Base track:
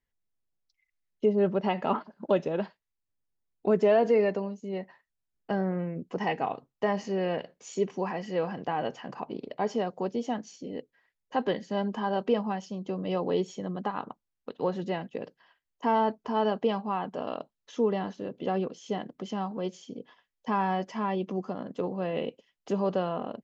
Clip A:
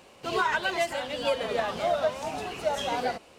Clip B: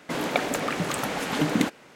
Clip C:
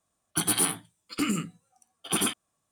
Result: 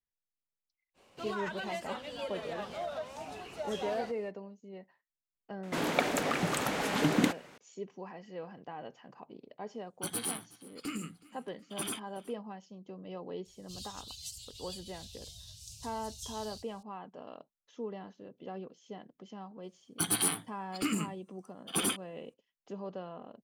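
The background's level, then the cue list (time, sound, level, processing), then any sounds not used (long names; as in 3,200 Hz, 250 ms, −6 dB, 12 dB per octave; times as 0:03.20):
base track −13.5 dB
0:00.94: mix in A −10 dB, fades 0.05 s + brickwall limiter −19 dBFS
0:05.63: mix in B −3.5 dB
0:09.66: mix in C −11 dB + repeating echo 371 ms, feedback 48%, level −22 dB
0:13.45: mix in A −1 dB + inverse Chebyshev band-stop filter 250–1,900 Hz, stop band 50 dB
0:19.63: mix in C −4.5 dB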